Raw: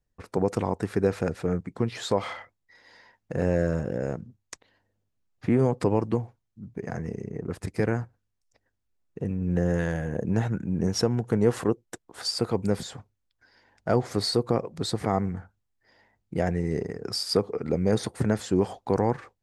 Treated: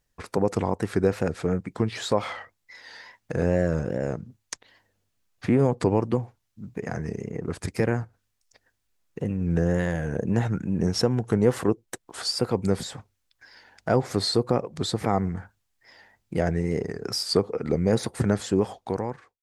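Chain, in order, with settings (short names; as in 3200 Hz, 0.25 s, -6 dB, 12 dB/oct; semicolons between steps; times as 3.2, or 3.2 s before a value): ending faded out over 0.93 s; wow and flutter 78 cents; mismatched tape noise reduction encoder only; gain +1.5 dB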